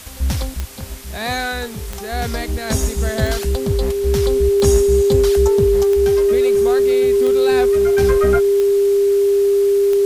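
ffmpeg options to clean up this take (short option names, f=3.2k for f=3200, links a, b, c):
-af "adeclick=t=4,bandreject=f=400:w=30,afwtdn=0.014"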